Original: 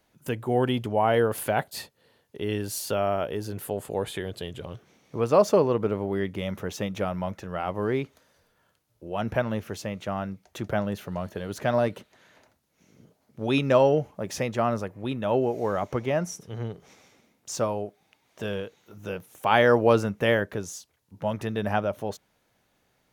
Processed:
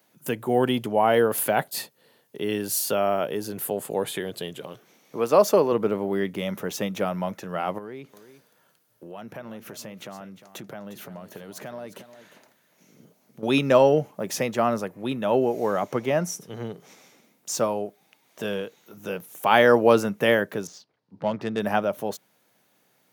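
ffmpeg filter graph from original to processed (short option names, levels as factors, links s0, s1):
-filter_complex "[0:a]asettb=1/sr,asplit=3[s0][s1][s2];[s0]atrim=end=4.544[s3];[s1]atrim=start=4.54:end=5.72,asetpts=PTS-STARTPTS,afade=t=in:d=0.004:c=qsin,afade=t=out:st=1.176:d=0.004:c=qsin,highpass=f=250:p=1,equalizer=f=13000:w=4.3:g=5.5[s4];[s2]atrim=start=5.716[s5];[s3][s4]acrossfade=d=0.004:c1=hsin:c2=qsin[s6];[s6][s5]acrossfade=d=0.004:c1=qsin:c2=hsin,asettb=1/sr,asplit=3[s7][s8][s9];[s7]atrim=end=7.784[s10];[s8]atrim=start=7.78:end=13.43,asetpts=PTS-STARTPTS,afade=t=in:d=0.004:c=qsin,afade=t=out:st=5.646:d=0.004:c=qsin,acompressor=threshold=0.0112:ratio=4:attack=3.2:release=140:knee=1:detection=peak,aecho=1:1:354:0.224,atrim=end_sample=249165[s11];[s9]atrim=start=13.426[s12];[s10][s11]acrossfade=d=0.004:c1=hsin:c2=qsin[s13];[s13][s12]acrossfade=d=0.004:c1=qsin:c2=hsin,asettb=1/sr,asplit=3[s14][s15][s16];[s14]atrim=end=20.674[s17];[s15]atrim=start=20.67:end=21.6,asetpts=PTS-STARTPTS,afade=t=in:d=0.004:c=qsin,afade=t=out:st=0.926:d=0.004:c=qsin,equalizer=f=4700:w=1.8:g=12,adynamicsmooth=sensitivity=2:basefreq=1700[s18];[s16]atrim=start=21.596[s19];[s17][s18]acrossfade=d=0.004:c1=hsin:c2=qsin[s20];[s20][s19]acrossfade=d=0.004:c1=qsin:c2=hsin,highpass=f=140:w=0.5412,highpass=f=140:w=1.3066,highshelf=f=11000:g=12,volume=1.33"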